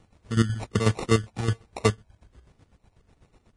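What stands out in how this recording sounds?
phaser sweep stages 8, 1.3 Hz, lowest notch 420–3,500 Hz
aliases and images of a low sample rate 1,600 Hz, jitter 0%
chopped level 8.1 Hz, depth 65%, duty 40%
Ogg Vorbis

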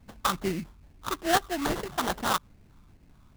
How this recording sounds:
phaser sweep stages 8, 2.4 Hz, lowest notch 520–1,200 Hz
aliases and images of a low sample rate 2,400 Hz, jitter 20%

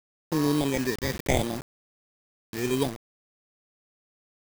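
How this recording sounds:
aliases and images of a low sample rate 1,400 Hz, jitter 0%
phaser sweep stages 6, 0.73 Hz, lowest notch 760–2,700 Hz
a quantiser's noise floor 6 bits, dither none

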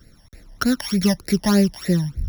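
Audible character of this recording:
a buzz of ramps at a fixed pitch in blocks of 8 samples
phaser sweep stages 12, 3.3 Hz, lowest notch 400–1,100 Hz

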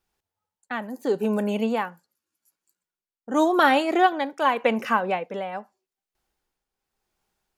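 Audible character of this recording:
tremolo triangle 0.86 Hz, depth 70%

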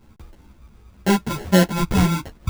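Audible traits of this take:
phaser sweep stages 4, 1.4 Hz, lowest notch 450–1,100 Hz
aliases and images of a low sample rate 1,200 Hz, jitter 0%
a shimmering, thickened sound

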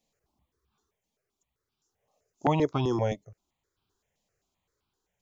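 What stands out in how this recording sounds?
tremolo saw down 0.53 Hz, depth 30%
notches that jump at a steady rate 7.7 Hz 380–1,900 Hz

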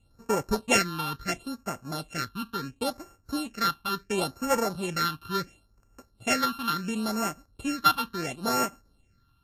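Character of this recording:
a buzz of ramps at a fixed pitch in blocks of 32 samples
phaser sweep stages 6, 0.72 Hz, lowest notch 540–3,700 Hz
Ogg Vorbis

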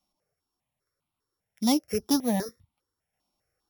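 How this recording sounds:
a buzz of ramps at a fixed pitch in blocks of 8 samples
notches that jump at a steady rate 5 Hz 460–1,700 Hz

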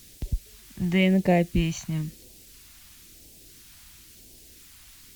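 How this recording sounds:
a quantiser's noise floor 10 bits, dither triangular
phaser sweep stages 2, 0.98 Hz, lowest notch 430–1,200 Hz
Opus

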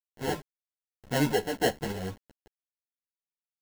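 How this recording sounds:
aliases and images of a low sample rate 1,200 Hz, jitter 0%
tremolo saw up 0.76 Hz, depth 65%
a quantiser's noise floor 8 bits, dither none
a shimmering, thickened sound

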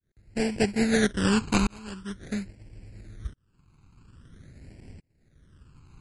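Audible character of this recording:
aliases and images of a low sample rate 1,200 Hz, jitter 20%
tremolo saw up 0.6 Hz, depth 100%
phaser sweep stages 12, 0.46 Hz, lowest notch 580–1,200 Hz
MP3

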